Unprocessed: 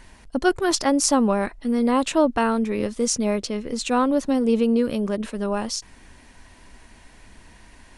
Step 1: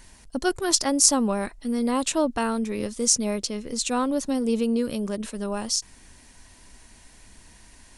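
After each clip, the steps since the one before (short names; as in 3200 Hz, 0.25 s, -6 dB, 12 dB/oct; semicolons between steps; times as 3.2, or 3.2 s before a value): tone controls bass +2 dB, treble +11 dB; gain -5 dB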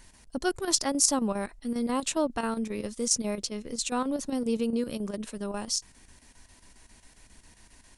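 chopper 7.4 Hz, depth 60%, duty 80%; gain -4 dB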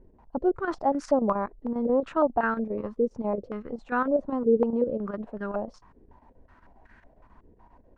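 stepped low-pass 5.4 Hz 430–1600 Hz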